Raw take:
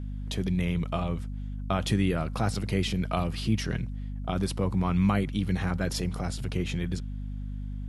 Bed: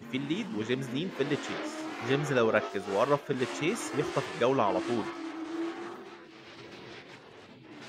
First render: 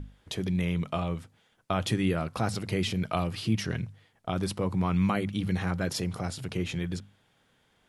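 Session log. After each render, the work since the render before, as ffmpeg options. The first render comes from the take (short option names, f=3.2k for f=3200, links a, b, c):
-af "bandreject=f=50:t=h:w=6,bandreject=f=100:t=h:w=6,bandreject=f=150:t=h:w=6,bandreject=f=200:t=h:w=6,bandreject=f=250:t=h:w=6"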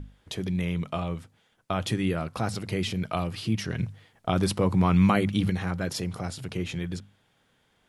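-filter_complex "[0:a]asplit=3[a][b][c];[a]atrim=end=3.792[d];[b]atrim=start=3.788:end=5.502,asetpts=PTS-STARTPTS,volume=5.5dB[e];[c]atrim=start=5.498[f];[d][e]acrossfade=d=0.004:c1=hsin:c2=hsin[g];[g][f]acrossfade=d=0.004:c1=hsin:c2=hsin"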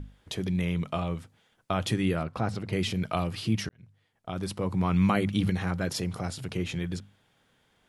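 -filter_complex "[0:a]asettb=1/sr,asplit=3[a][b][c];[a]atrim=end=2.234[d];[b]atrim=start=2.23:end=2.73,asetpts=PTS-STARTPTS,afade=t=in:d=0.004:c=qsin,afade=t=out:st=0.496:d=0.004:c=qsin,lowpass=f=2.1k:p=1[e];[c]atrim=start=2.726[f];[d][e]acrossfade=d=0.004:c1=hsin:c2=qsin[g];[g][f]acrossfade=d=0.004:c1=qsin:c2=hsin,asplit=2[h][i];[h]atrim=end=3.69,asetpts=PTS-STARTPTS,afade=t=out:st=3.686:d=0.004:c=hsin[j];[i]atrim=start=3.69,asetpts=PTS-STARTPTS,afade=t=in:d=1.95[k];[j][k]concat=n=2:v=0:a=1"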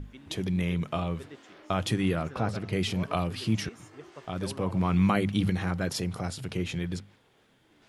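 -filter_complex "[1:a]volume=-16.5dB[a];[0:a][a]amix=inputs=2:normalize=0"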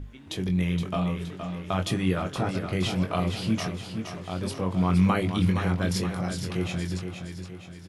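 -filter_complex "[0:a]asplit=2[a][b];[b]adelay=22,volume=-6.5dB[c];[a][c]amix=inputs=2:normalize=0,asplit=2[d][e];[e]aecho=0:1:469|938|1407|1876|2345|2814:0.422|0.207|0.101|0.0496|0.0243|0.0119[f];[d][f]amix=inputs=2:normalize=0"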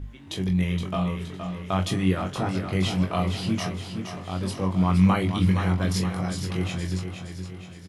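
-filter_complex "[0:a]asplit=2[a][b];[b]adelay=21,volume=-5.5dB[c];[a][c]amix=inputs=2:normalize=0,aecho=1:1:1025:0.0794"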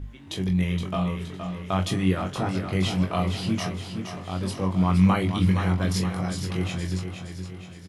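-af anull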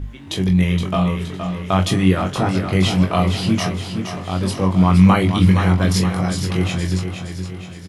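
-af "volume=8dB,alimiter=limit=-2dB:level=0:latency=1"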